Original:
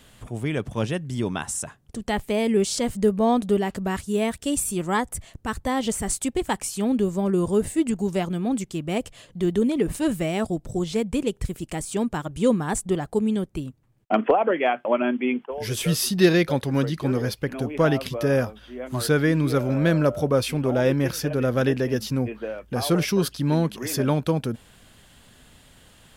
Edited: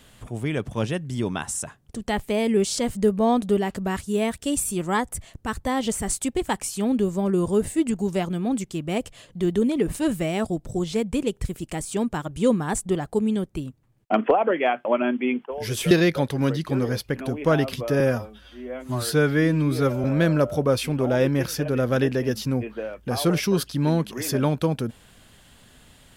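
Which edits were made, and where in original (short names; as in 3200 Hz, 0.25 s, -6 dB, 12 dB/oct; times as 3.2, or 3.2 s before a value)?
15.91–16.24 cut
18.33–19.69 stretch 1.5×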